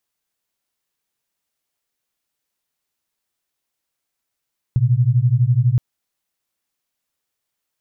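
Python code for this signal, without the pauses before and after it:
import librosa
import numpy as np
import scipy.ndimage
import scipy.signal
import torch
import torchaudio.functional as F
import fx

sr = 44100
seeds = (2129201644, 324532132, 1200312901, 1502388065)

y = fx.two_tone_beats(sr, length_s=1.02, hz=117.0, beat_hz=12.0, level_db=-15.5)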